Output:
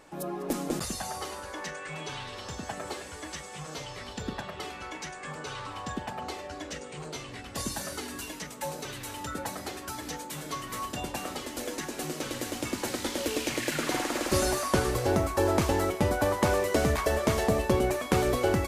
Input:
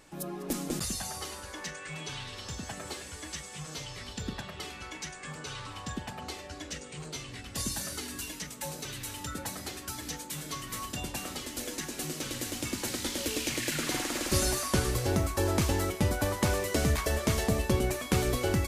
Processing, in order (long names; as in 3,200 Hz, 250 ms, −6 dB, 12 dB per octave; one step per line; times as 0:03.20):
parametric band 700 Hz +9 dB 2.9 octaves
level −2.5 dB